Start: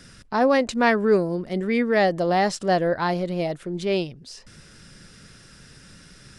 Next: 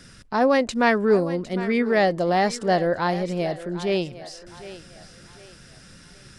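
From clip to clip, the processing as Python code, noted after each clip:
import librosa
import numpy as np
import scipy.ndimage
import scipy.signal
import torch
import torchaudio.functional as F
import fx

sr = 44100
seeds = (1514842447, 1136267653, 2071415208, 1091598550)

y = fx.echo_thinned(x, sr, ms=757, feedback_pct=39, hz=350.0, wet_db=-14)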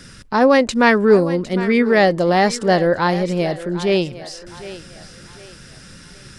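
y = fx.peak_eq(x, sr, hz=690.0, db=-5.0, octaves=0.23)
y = F.gain(torch.from_numpy(y), 6.5).numpy()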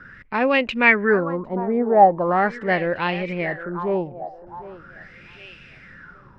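y = fx.filter_lfo_lowpass(x, sr, shape='sine', hz=0.41, low_hz=750.0, high_hz=2700.0, q=7.5)
y = F.gain(torch.from_numpy(y), -7.5).numpy()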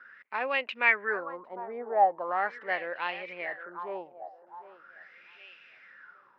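y = fx.bandpass_edges(x, sr, low_hz=670.0, high_hz=4200.0)
y = F.gain(torch.from_numpy(y), -7.5).numpy()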